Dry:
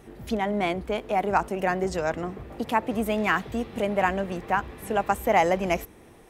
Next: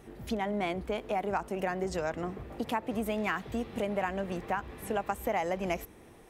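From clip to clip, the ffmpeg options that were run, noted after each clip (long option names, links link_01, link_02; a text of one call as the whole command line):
ffmpeg -i in.wav -af "acompressor=threshold=-25dB:ratio=4,volume=-3dB" out.wav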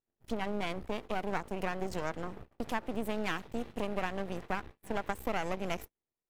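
ffmpeg -i in.wav -af "agate=range=-39dB:threshold=-40dB:ratio=16:detection=peak,aeval=exprs='max(val(0),0)':channel_layout=same" out.wav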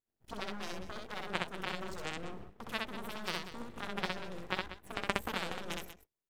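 ffmpeg -i in.wav -af "aeval=exprs='0.168*(cos(1*acos(clip(val(0)/0.168,-1,1)))-cos(1*PI/2))+0.0668*(cos(3*acos(clip(val(0)/0.168,-1,1)))-cos(3*PI/2))+0.00422*(cos(7*acos(clip(val(0)/0.168,-1,1)))-cos(7*PI/2))':channel_layout=same,aecho=1:1:64.14|189.5:0.794|0.251,volume=4.5dB" out.wav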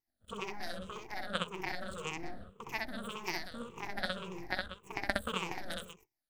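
ffmpeg -i in.wav -af "afftfilt=real='re*pow(10,17/40*sin(2*PI*(0.74*log(max(b,1)*sr/1024/100)/log(2)-(-1.8)*(pts-256)/sr)))':imag='im*pow(10,17/40*sin(2*PI*(0.74*log(max(b,1)*sr/1024/100)/log(2)-(-1.8)*(pts-256)/sr)))':win_size=1024:overlap=0.75,volume=-3dB" out.wav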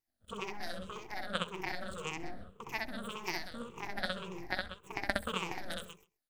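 ffmpeg -i in.wav -af "aecho=1:1:132:0.075" out.wav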